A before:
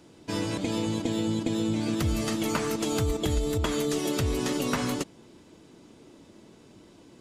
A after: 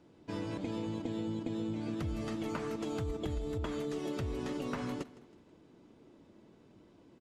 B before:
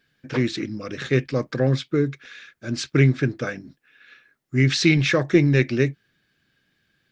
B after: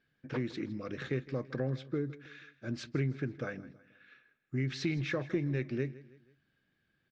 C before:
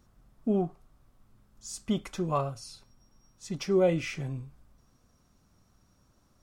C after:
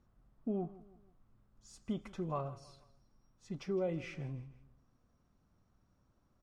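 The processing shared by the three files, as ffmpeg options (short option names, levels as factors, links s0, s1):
-af "lowpass=f=1900:p=1,acompressor=threshold=0.0501:ratio=2.5,aecho=1:1:161|322|483:0.119|0.0511|0.022,volume=0.447"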